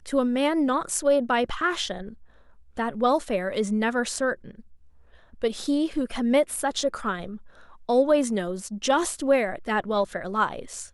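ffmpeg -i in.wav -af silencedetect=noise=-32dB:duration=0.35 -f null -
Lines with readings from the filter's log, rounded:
silence_start: 2.09
silence_end: 2.77 | silence_duration: 0.69
silence_start: 4.51
silence_end: 5.42 | silence_duration: 0.91
silence_start: 7.36
silence_end: 7.89 | silence_duration: 0.53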